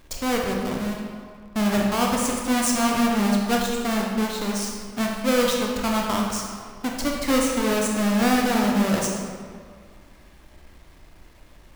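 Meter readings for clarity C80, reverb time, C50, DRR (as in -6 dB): 3.0 dB, 1.9 s, 1.0 dB, -1.0 dB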